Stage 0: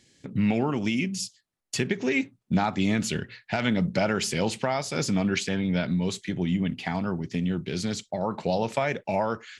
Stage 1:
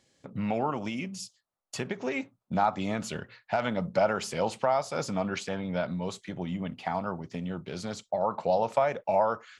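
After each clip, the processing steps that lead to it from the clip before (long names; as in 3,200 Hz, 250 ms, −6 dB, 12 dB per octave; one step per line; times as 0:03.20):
flat-topped bell 830 Hz +10.5 dB
level −8 dB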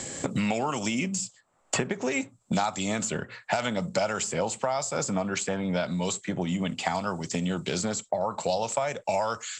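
low-pass with resonance 7,600 Hz, resonance Q 12
multiband upward and downward compressor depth 100%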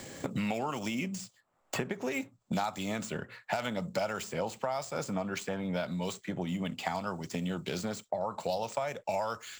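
running median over 5 samples
level −5.5 dB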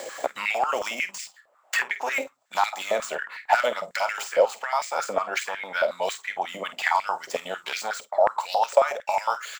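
double-tracking delay 49 ms −12.5 dB
high-pass on a step sequencer 11 Hz 560–2,100 Hz
level +6.5 dB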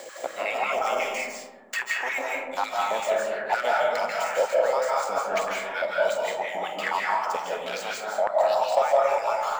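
in parallel at −9 dB: hard clipping −15 dBFS, distortion −13 dB
on the sum: comb and all-pass reverb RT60 1.5 s, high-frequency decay 0.25×, pre-delay 120 ms, DRR −3 dB
level −7.5 dB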